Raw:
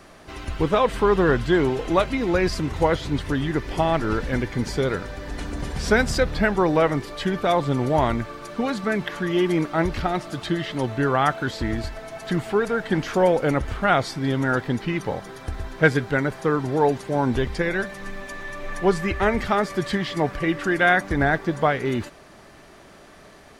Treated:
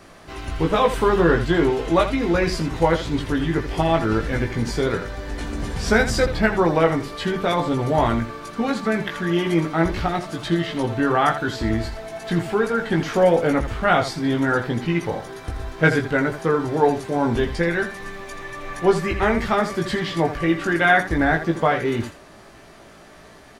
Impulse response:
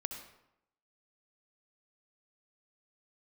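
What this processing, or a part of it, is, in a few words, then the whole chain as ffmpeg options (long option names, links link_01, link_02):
slapback doubling: -filter_complex "[0:a]asettb=1/sr,asplit=3[link_01][link_02][link_03];[link_01]atrim=end=0.734[link_04];[link_02]atrim=start=0.73:end=1.17,asetpts=PTS-STARTPTS,afade=type=in:duration=0.004:curve=qsin,afade=type=out:start_time=0.436:duration=0.004:curve=qsin,highshelf=frequency=7600:gain=7[link_05];[link_03]atrim=start=1.166[link_06];[link_04][link_05]acrossfade=duration=0.004:curve1=hsin:curve2=qsin[link_07];[link_07][link_06]acrossfade=duration=0.004:curve1=qsin:curve2=hsin,asplit=3[link_08][link_09][link_10];[link_09]adelay=18,volume=-3.5dB[link_11];[link_10]adelay=82,volume=-10dB[link_12];[link_08][link_11][link_12]amix=inputs=3:normalize=0"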